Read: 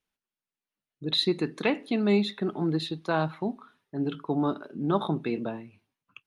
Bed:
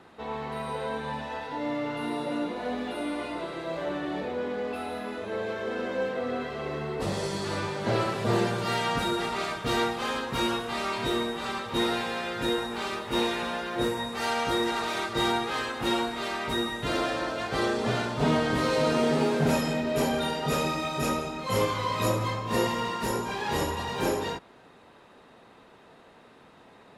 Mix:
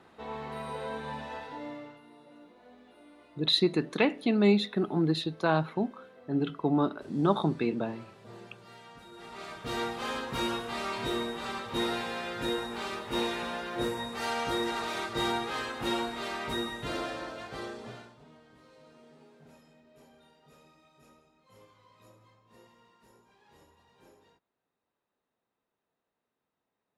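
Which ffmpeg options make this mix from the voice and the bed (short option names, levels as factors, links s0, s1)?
-filter_complex "[0:a]adelay=2350,volume=1.06[s0];[1:a]volume=5.62,afade=t=out:st=1.34:d=0.67:silence=0.112202,afade=t=in:st=9.11:d=0.99:silence=0.105925,afade=t=out:st=16.51:d=1.73:silence=0.0375837[s1];[s0][s1]amix=inputs=2:normalize=0"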